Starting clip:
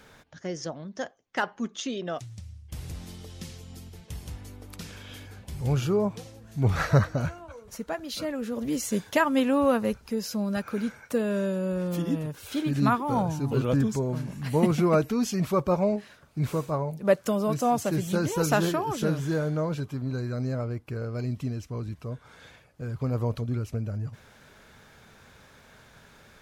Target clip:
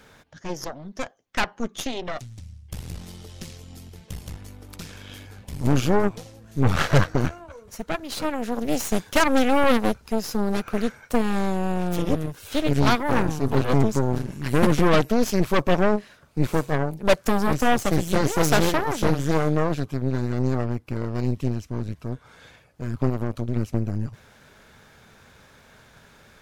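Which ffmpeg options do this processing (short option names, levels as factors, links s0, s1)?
-filter_complex "[0:a]aeval=exprs='0.335*(cos(1*acos(clip(val(0)/0.335,-1,1)))-cos(1*PI/2))+0.0841*(cos(8*acos(clip(val(0)/0.335,-1,1)))-cos(8*PI/2))':c=same,asplit=3[s0][s1][s2];[s0]afade=t=out:st=23.09:d=0.02[s3];[s1]acompressor=threshold=0.0794:ratio=5,afade=t=in:st=23.09:d=0.02,afade=t=out:st=23.55:d=0.02[s4];[s2]afade=t=in:st=23.55:d=0.02[s5];[s3][s4][s5]amix=inputs=3:normalize=0,volume=1.19"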